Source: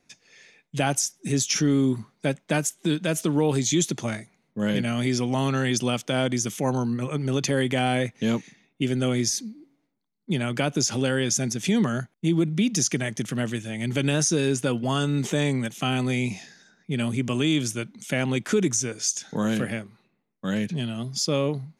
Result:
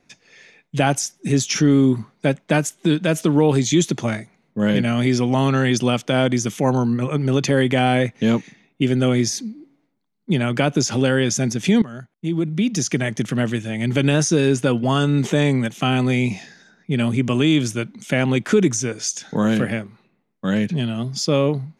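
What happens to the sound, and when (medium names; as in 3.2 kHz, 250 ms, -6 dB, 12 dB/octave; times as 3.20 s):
11.82–13.11 s: fade in, from -18 dB
whole clip: treble shelf 5.1 kHz -9.5 dB; trim +6.5 dB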